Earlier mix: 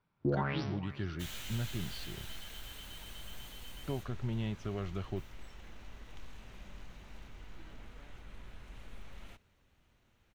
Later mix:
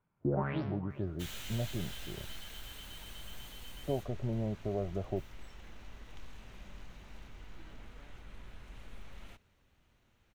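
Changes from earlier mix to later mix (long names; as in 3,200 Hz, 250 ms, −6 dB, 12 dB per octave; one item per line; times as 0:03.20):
speech: add low-pass with resonance 620 Hz, resonance Q 4
first sound: add high-frequency loss of the air 370 metres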